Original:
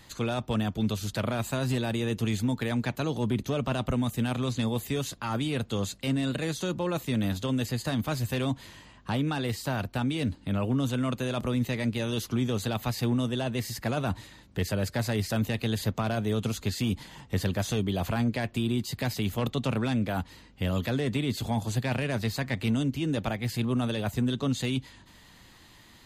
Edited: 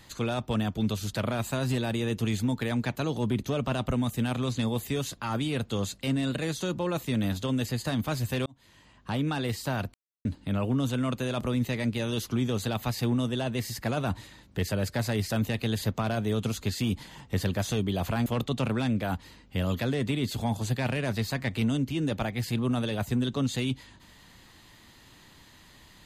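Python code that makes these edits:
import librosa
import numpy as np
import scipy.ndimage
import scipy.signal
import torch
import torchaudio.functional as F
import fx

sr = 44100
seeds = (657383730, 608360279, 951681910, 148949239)

y = fx.edit(x, sr, fx.fade_in_span(start_s=8.46, length_s=0.8),
    fx.silence(start_s=9.94, length_s=0.31),
    fx.cut(start_s=18.26, length_s=1.06), tone=tone)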